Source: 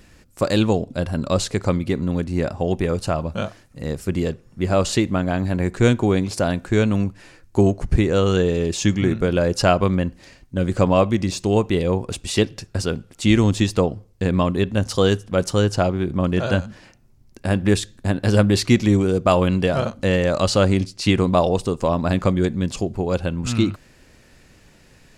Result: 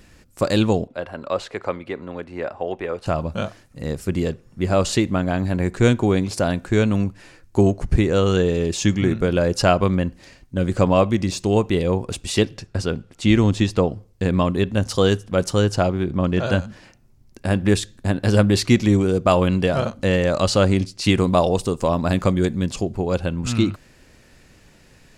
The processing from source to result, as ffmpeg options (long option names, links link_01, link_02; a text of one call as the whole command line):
ffmpeg -i in.wav -filter_complex "[0:a]asettb=1/sr,asplit=3[link_01][link_02][link_03];[link_01]atrim=end=0.874[link_04];[link_02]atrim=start=0.87:end=3.06,asetpts=PTS-STARTPTS,afade=type=in:duration=0.004:curve=qsin,afade=type=out:start_time=2.186:duration=0.004:curve=qsin,acrossover=split=390 3100:gain=0.141 1 0.141[link_05][link_06][link_07];[link_05][link_06][link_07]amix=inputs=3:normalize=0[link_08];[link_03]atrim=start=3.056[link_09];[link_04][link_08]acrossfade=duration=0.004:curve1=hsin:curve2=qsin[link_10];[link_10][link_09]acrossfade=duration=0.004:curve1=qsin:curve2=hsin,asettb=1/sr,asplit=3[link_11][link_12][link_13];[link_11]atrim=end=12.574[link_14];[link_12]atrim=start=12.57:end=13.86,asetpts=PTS-STARTPTS,afade=type=in:duration=0.004:curve=qsin,afade=type=out:start_time=1.286:duration=0.004:curve=qsin,highshelf=frequency=7900:gain=-11[link_15];[link_13]atrim=start=13.856[link_16];[link_14][link_15]acrossfade=duration=0.004:curve1=hsin:curve2=qsin[link_17];[link_17][link_16]acrossfade=duration=0.004:curve1=qsin:curve2=hsin,asettb=1/sr,asplit=3[link_18][link_19][link_20];[link_18]atrim=end=16.044[link_21];[link_19]atrim=start=16.04:end=16.45,asetpts=PTS-STARTPTS,afade=type=in:duration=0.004:curve=qsin,afade=type=out:start_time=0.406:duration=0.004:curve=qsin,lowpass=7300[link_22];[link_20]atrim=start=16.446[link_23];[link_21][link_22]acrossfade=duration=0.004:curve1=hsin:curve2=qsin[link_24];[link_24][link_23]acrossfade=duration=0.004:curve1=qsin:curve2=hsin,asettb=1/sr,asplit=3[link_25][link_26][link_27];[link_25]atrim=end=21.044[link_28];[link_26]atrim=start=21.04:end=22.65,asetpts=PTS-STARTPTS,afade=type=in:duration=0.004:curve=qsin,afade=type=out:start_time=1.606:duration=0.004:curve=qsin,highshelf=frequency=7700:gain=7.5[link_29];[link_27]atrim=start=22.646[link_30];[link_28][link_29]acrossfade=duration=0.004:curve1=hsin:curve2=qsin[link_31];[link_31][link_30]acrossfade=duration=0.004:curve1=qsin:curve2=hsin" out.wav